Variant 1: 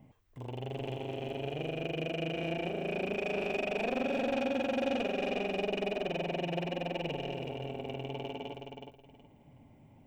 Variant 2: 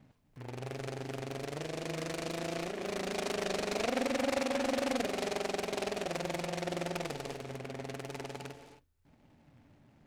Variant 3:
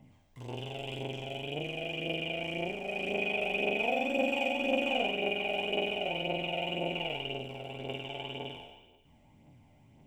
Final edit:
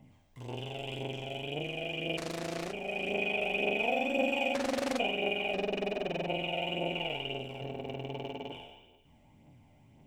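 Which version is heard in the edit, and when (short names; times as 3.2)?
3
2.17–2.73 from 2
4.54–4.99 from 2
5.54–6.28 from 1
7.61–8.52 from 1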